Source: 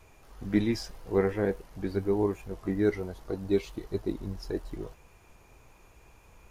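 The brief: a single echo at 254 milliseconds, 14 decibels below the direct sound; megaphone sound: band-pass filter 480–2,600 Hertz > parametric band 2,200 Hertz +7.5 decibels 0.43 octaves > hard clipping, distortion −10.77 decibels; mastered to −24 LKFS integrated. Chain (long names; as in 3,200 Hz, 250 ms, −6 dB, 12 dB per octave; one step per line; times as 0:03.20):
band-pass filter 480–2,600 Hz
parametric band 2,200 Hz +7.5 dB 0.43 octaves
single-tap delay 254 ms −14 dB
hard clipping −28 dBFS
level +14.5 dB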